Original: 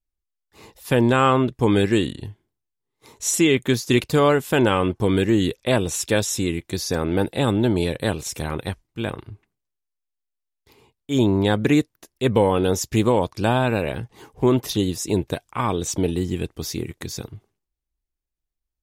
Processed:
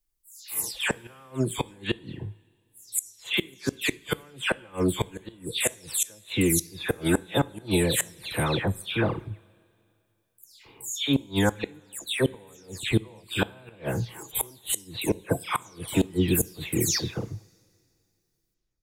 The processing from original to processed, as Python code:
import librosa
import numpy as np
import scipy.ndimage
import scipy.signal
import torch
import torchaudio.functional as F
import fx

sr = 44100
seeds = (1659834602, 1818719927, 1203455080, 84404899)

y = fx.spec_delay(x, sr, highs='early', ms=283)
y = fx.high_shelf(y, sr, hz=4300.0, db=10.5)
y = fx.rider(y, sr, range_db=3, speed_s=0.5)
y = fx.gate_flip(y, sr, shuts_db=-11.0, range_db=-32)
y = fx.rev_double_slope(y, sr, seeds[0], early_s=0.4, late_s=2.6, knee_db=-16, drr_db=17.5)